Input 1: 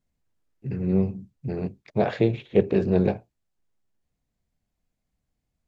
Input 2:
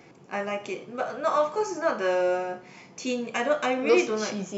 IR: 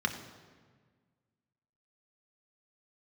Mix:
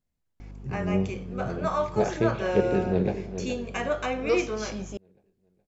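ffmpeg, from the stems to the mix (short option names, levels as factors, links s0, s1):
-filter_complex "[0:a]volume=0.631,asplit=2[s0][s1];[s1]volume=0.316[s2];[1:a]aeval=exprs='val(0)+0.0141*(sin(2*PI*50*n/s)+sin(2*PI*2*50*n/s)/2+sin(2*PI*3*50*n/s)/3+sin(2*PI*4*50*n/s)/4+sin(2*PI*5*50*n/s)/5)':c=same,adelay=400,volume=0.668[s3];[s2]aecho=0:1:419|838|1257|1676|2095|2514:1|0.46|0.212|0.0973|0.0448|0.0206[s4];[s0][s3][s4]amix=inputs=3:normalize=0"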